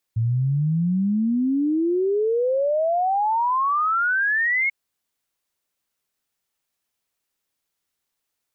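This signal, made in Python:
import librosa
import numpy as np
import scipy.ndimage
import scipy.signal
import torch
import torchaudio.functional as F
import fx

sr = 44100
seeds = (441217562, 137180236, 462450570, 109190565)

y = fx.ess(sr, length_s=4.54, from_hz=110.0, to_hz=2200.0, level_db=-18.0)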